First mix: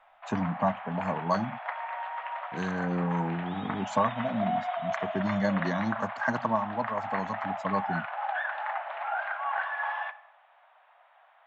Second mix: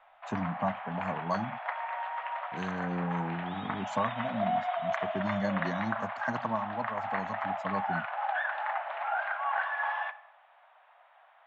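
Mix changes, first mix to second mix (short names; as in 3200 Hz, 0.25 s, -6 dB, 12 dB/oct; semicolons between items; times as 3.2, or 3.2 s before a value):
speech -5.0 dB; master: add bell 69 Hz +3 dB 2.3 oct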